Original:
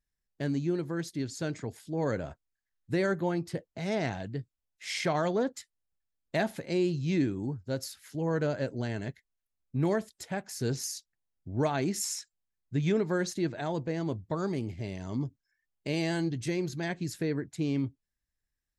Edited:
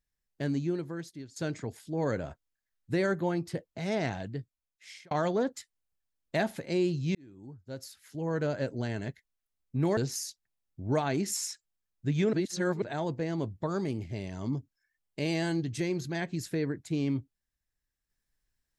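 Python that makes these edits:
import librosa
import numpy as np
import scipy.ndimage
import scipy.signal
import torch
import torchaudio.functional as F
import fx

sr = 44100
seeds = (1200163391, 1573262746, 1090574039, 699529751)

y = fx.edit(x, sr, fx.fade_out_to(start_s=0.58, length_s=0.78, floor_db=-16.5),
    fx.fade_out_span(start_s=4.25, length_s=0.86),
    fx.fade_in_span(start_s=7.15, length_s=1.46),
    fx.cut(start_s=9.97, length_s=0.68),
    fx.reverse_span(start_s=13.01, length_s=0.49), tone=tone)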